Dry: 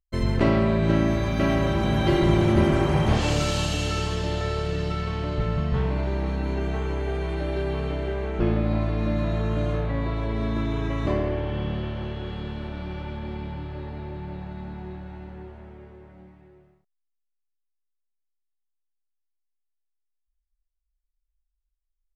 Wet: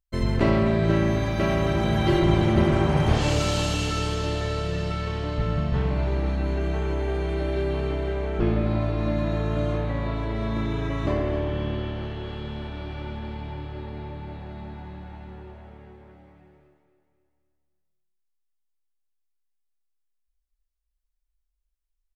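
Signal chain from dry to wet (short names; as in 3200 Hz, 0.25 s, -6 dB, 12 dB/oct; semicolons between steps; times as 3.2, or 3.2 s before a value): de-hum 91.8 Hz, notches 35; 2.19–2.97 high shelf 9200 Hz -8.5 dB; feedback echo 0.262 s, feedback 51%, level -11 dB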